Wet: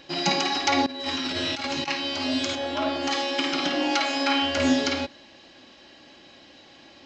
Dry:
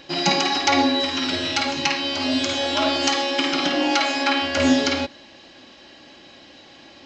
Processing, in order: 0.86–1.88 s: compressor with a negative ratio -25 dBFS, ratio -0.5; 2.55–3.11 s: treble shelf 3.2 kHz -12 dB; 4.09–4.57 s: flutter echo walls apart 6.2 m, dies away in 0.34 s; trim -4 dB

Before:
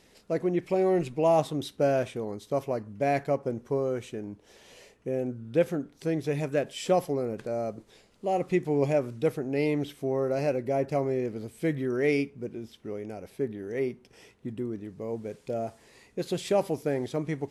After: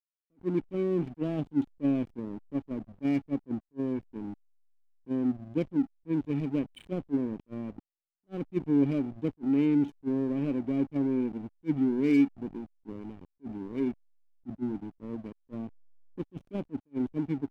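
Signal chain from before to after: cascade formant filter i; hysteresis with a dead band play -43 dBFS; attacks held to a fixed rise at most 540 dB/s; trim +9 dB

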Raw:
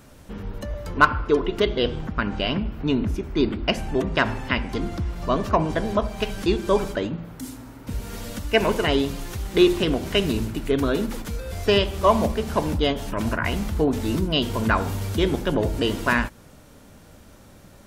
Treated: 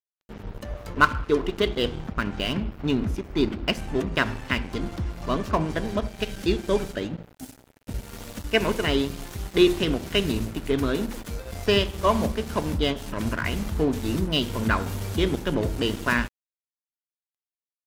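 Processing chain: dynamic bell 740 Hz, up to -5 dB, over -36 dBFS, Q 1.3; crossover distortion -36.5 dBFS; 5.91–8.07 s: peaking EQ 1.1 kHz -6.5 dB 0.39 oct

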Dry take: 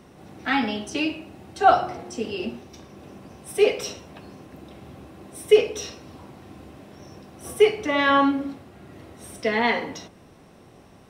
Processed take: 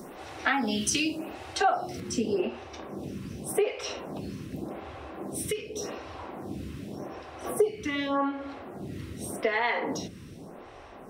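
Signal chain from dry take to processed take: treble shelf 3.5 kHz +9 dB, from 2.00 s -3.5 dB; compression 8:1, threshold -30 dBFS, peak gain reduction 20 dB; lamp-driven phase shifter 0.86 Hz; trim +8.5 dB

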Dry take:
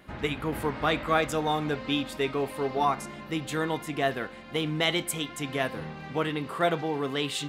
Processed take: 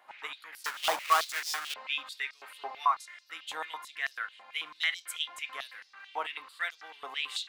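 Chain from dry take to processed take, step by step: 0.64–1.74 s: square wave that keeps the level; step-sequenced high-pass 9.1 Hz 840–5200 Hz; trim -8.5 dB

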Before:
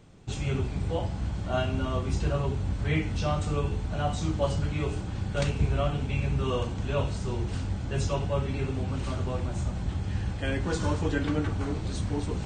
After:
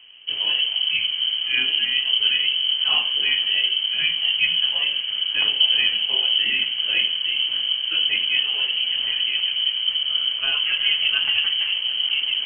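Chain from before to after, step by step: treble shelf 2.2 kHz -10 dB; frequency inversion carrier 3.1 kHz; trim +6 dB

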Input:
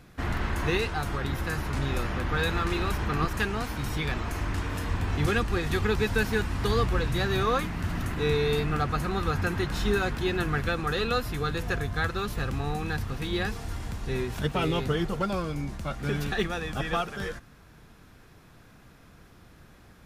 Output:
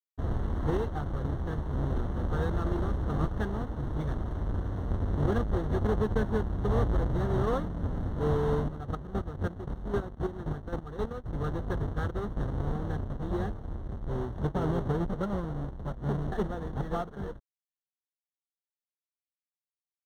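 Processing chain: square wave that keeps the level; 8.62–11.33 s: square tremolo 3.8 Hz, depth 60%, duty 25%; crossover distortion -40 dBFS; boxcar filter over 18 samples; trim -5 dB

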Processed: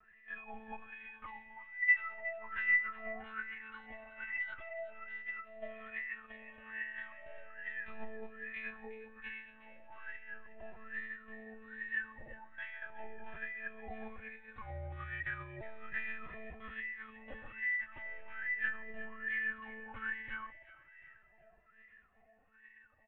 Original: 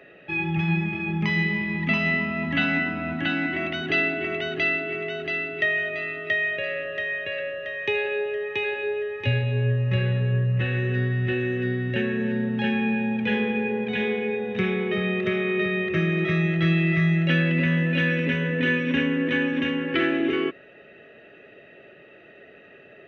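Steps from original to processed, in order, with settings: wah-wah 1.2 Hz 710–2000 Hz, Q 17; monotone LPC vocoder at 8 kHz 220 Hz; feedback echo behind a high-pass 365 ms, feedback 40%, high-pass 1.7 kHz, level -13 dB; 14.61–15.61 s: frequency shift -80 Hz; bass shelf 130 Hz +8.5 dB; endless flanger 2.5 ms +0.37 Hz; trim +4 dB

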